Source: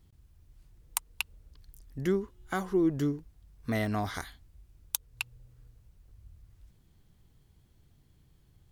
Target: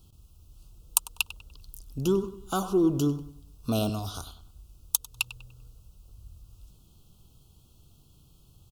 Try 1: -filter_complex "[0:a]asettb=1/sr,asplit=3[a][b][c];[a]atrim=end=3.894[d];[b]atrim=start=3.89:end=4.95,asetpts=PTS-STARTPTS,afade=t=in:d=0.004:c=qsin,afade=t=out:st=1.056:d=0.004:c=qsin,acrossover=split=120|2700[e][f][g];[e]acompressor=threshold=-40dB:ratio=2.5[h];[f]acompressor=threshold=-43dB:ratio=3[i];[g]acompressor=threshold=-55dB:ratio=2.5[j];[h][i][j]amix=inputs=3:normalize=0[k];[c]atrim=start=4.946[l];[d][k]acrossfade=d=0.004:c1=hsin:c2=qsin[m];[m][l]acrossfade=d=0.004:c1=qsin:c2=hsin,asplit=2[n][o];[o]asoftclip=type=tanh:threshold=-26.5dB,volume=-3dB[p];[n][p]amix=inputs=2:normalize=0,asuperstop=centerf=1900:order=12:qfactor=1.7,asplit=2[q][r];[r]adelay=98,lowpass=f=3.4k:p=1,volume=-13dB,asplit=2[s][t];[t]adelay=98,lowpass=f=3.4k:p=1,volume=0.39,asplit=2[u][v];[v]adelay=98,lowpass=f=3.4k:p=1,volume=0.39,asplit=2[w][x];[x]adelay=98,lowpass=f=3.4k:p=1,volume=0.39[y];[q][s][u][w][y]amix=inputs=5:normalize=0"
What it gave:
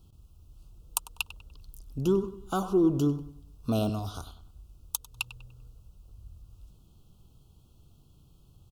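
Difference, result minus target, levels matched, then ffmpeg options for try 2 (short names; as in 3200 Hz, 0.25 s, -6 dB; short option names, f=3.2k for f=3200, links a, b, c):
4000 Hz band -3.5 dB
-filter_complex "[0:a]asettb=1/sr,asplit=3[a][b][c];[a]atrim=end=3.894[d];[b]atrim=start=3.89:end=4.95,asetpts=PTS-STARTPTS,afade=t=in:d=0.004:c=qsin,afade=t=out:st=1.056:d=0.004:c=qsin,acrossover=split=120|2700[e][f][g];[e]acompressor=threshold=-40dB:ratio=2.5[h];[f]acompressor=threshold=-43dB:ratio=3[i];[g]acompressor=threshold=-55dB:ratio=2.5[j];[h][i][j]amix=inputs=3:normalize=0[k];[c]atrim=start=4.946[l];[d][k]acrossfade=d=0.004:c1=hsin:c2=qsin[m];[m][l]acrossfade=d=0.004:c1=qsin:c2=hsin,asplit=2[n][o];[o]asoftclip=type=tanh:threshold=-26.5dB,volume=-3dB[p];[n][p]amix=inputs=2:normalize=0,asuperstop=centerf=1900:order=12:qfactor=1.7,highshelf=f=2.5k:g=7.5,asplit=2[q][r];[r]adelay=98,lowpass=f=3.4k:p=1,volume=-13dB,asplit=2[s][t];[t]adelay=98,lowpass=f=3.4k:p=1,volume=0.39,asplit=2[u][v];[v]adelay=98,lowpass=f=3.4k:p=1,volume=0.39,asplit=2[w][x];[x]adelay=98,lowpass=f=3.4k:p=1,volume=0.39[y];[q][s][u][w][y]amix=inputs=5:normalize=0"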